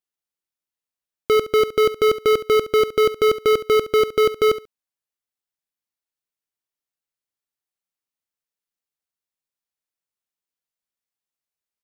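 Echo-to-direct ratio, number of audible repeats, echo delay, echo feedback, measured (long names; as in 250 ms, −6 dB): −14.5 dB, 2, 69 ms, 17%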